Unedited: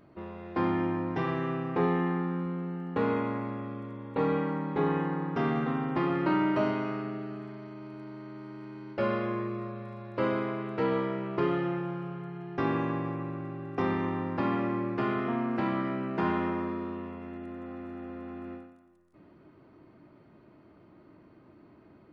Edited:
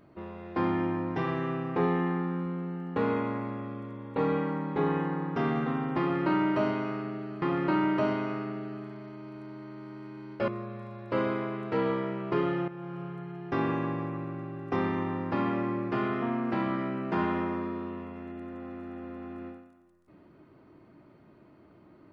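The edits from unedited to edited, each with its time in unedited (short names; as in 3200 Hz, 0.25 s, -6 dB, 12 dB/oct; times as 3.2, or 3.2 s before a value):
6–7.42 loop, 2 plays
9.06–9.54 cut
11.74–12.11 fade in, from -12.5 dB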